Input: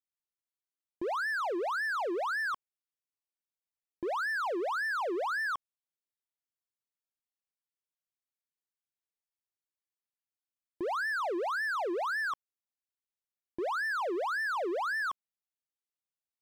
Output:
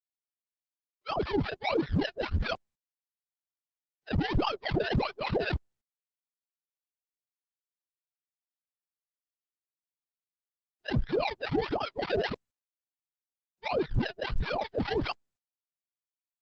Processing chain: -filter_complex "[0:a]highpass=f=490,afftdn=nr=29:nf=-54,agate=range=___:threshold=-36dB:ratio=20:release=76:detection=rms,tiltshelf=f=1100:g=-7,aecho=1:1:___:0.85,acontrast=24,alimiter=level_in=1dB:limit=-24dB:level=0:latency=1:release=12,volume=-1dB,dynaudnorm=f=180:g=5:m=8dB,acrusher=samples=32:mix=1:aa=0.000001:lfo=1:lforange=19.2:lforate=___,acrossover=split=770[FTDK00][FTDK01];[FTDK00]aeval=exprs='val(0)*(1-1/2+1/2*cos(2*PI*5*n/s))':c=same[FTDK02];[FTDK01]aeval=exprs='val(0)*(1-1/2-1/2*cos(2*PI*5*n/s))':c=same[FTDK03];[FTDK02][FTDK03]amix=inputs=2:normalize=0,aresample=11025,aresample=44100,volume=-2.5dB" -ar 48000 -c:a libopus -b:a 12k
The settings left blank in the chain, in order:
-50dB, 4.9, 1.5